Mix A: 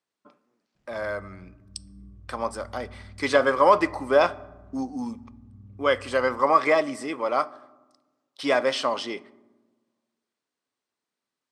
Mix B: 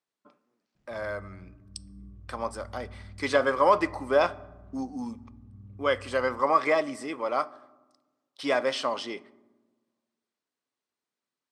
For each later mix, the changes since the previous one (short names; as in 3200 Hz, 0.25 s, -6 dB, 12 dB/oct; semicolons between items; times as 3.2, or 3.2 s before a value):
speech -3.5 dB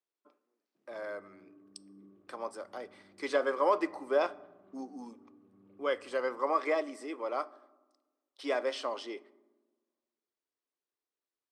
background +9.5 dB; master: add ladder high-pass 280 Hz, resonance 40%